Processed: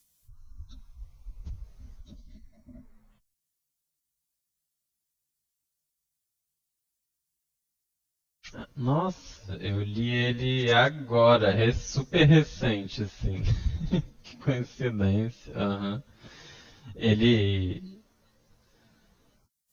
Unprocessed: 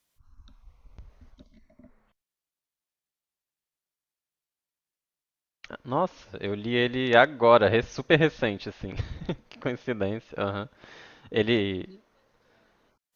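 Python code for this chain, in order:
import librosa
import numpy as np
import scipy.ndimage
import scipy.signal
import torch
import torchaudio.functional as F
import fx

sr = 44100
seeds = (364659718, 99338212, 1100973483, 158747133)

y = fx.bass_treble(x, sr, bass_db=13, treble_db=14)
y = fx.stretch_vocoder_free(y, sr, factor=1.5)
y = F.gain(torch.from_numpy(y), -1.5).numpy()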